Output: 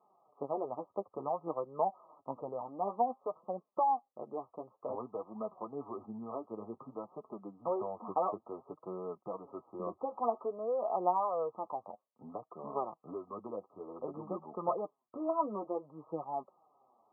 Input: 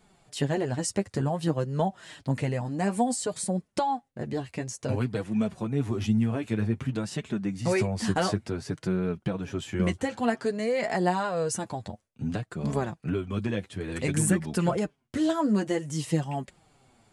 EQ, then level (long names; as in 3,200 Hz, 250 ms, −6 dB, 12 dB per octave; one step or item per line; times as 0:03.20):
high-pass filter 670 Hz 12 dB per octave
linear-phase brick-wall low-pass 1,300 Hz
0.0 dB